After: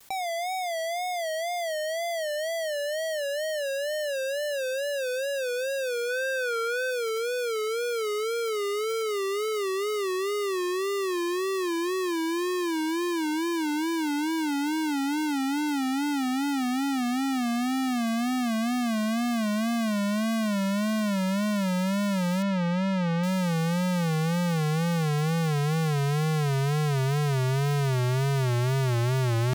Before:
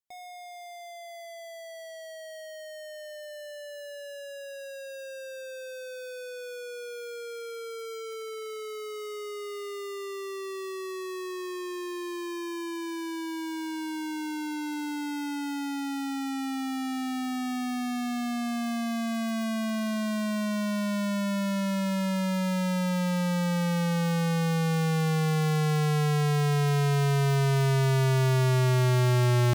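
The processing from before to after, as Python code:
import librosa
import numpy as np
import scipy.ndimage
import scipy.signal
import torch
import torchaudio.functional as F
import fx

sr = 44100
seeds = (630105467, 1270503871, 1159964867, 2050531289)

p1 = fx.peak_eq(x, sr, hz=1500.0, db=9.5, octaves=1.1, at=(6.08, 6.9), fade=0.02)
p2 = fx.lowpass(p1, sr, hz=3500.0, slope=12, at=(22.42, 23.23))
p3 = 10.0 ** (-37.0 / 20.0) * np.tanh(p2 / 10.0 ** (-37.0 / 20.0))
p4 = p2 + (p3 * librosa.db_to_amplitude(-7.0))
p5 = fx.wow_flutter(p4, sr, seeds[0], rate_hz=2.1, depth_cents=110.0)
p6 = fx.env_flatten(p5, sr, amount_pct=70)
y = p6 * librosa.db_to_amplitude(-3.0)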